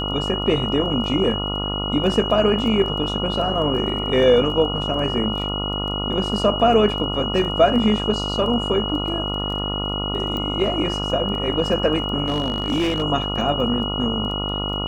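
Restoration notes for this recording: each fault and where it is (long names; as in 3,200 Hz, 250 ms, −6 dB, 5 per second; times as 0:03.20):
mains buzz 50 Hz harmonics 28 −27 dBFS
surface crackle 11 per second −29 dBFS
whistle 2,900 Hz −26 dBFS
0:10.37: click −16 dBFS
0:12.25–0:13.02: clipping −16.5 dBFS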